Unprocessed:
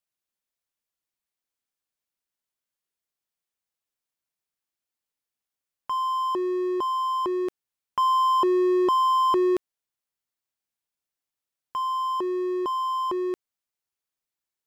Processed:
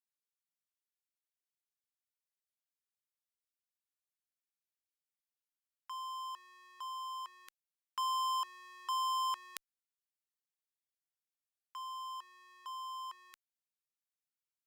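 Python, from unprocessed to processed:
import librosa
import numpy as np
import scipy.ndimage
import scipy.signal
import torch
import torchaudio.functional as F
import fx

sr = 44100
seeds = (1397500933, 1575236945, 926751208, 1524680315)

y = scipy.signal.sosfilt(scipy.signal.butter(4, 1200.0, 'highpass', fs=sr, output='sos'), x)
y = fx.high_shelf(y, sr, hz=4000.0, db=4.0)
y = fx.cheby_harmonics(y, sr, harmonics=(3, 5), levels_db=(-9, -28), full_scale_db=-16.5)
y = y * 10.0 ** (5.0 / 20.0)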